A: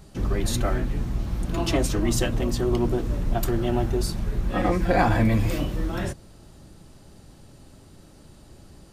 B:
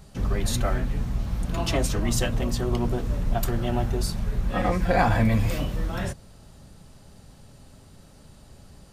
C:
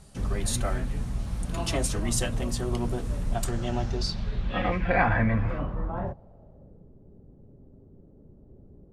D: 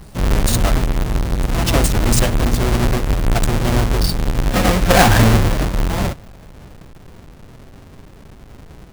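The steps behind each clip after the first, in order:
bell 330 Hz -10 dB 0.34 oct
low-pass sweep 9900 Hz -> 390 Hz, 3.26–6.96; gain -3.5 dB
half-waves squared off; gain +7.5 dB

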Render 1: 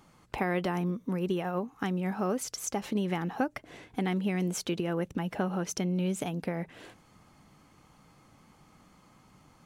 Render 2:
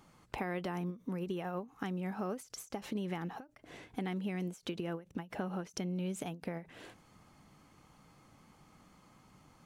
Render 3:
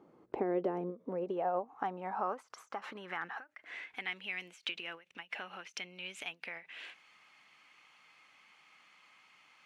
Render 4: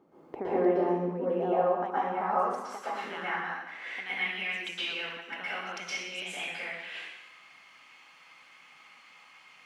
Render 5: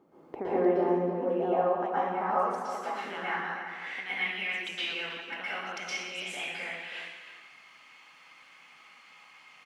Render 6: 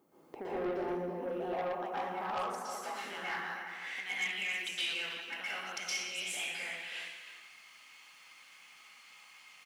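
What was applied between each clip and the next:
compressor 2:1, threshold -35 dBFS, peak gain reduction 6.5 dB; ending taper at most 220 dB/s; gain -2.5 dB
low shelf 270 Hz -5 dB; band-pass sweep 380 Hz -> 2500 Hz, 0.36–4.19; gain +12 dB
plate-style reverb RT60 1 s, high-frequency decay 0.95×, pre-delay 0.105 s, DRR -10 dB; gain -2.5 dB
outdoor echo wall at 55 m, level -9 dB
soft clip -23.5 dBFS, distortion -14 dB; pre-emphasis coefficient 0.8; gain +7 dB

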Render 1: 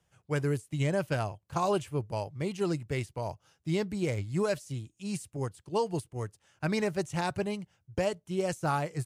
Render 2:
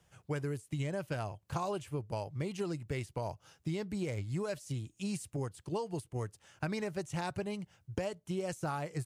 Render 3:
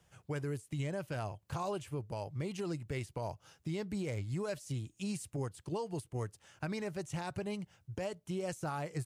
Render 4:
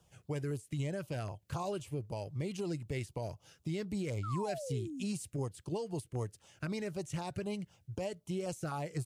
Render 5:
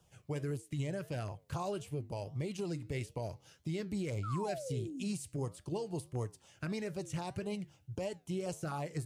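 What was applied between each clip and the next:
compressor 6:1, threshold -39 dBFS, peak gain reduction 14.5 dB; gain +5 dB
limiter -29 dBFS, peak gain reduction 6.5 dB
LFO notch saw down 3.9 Hz 710–2200 Hz; painted sound fall, 4.23–5.04, 230–1400 Hz -43 dBFS; gain +1 dB
flange 1.6 Hz, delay 7.3 ms, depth 4.7 ms, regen -85%; gain +4 dB

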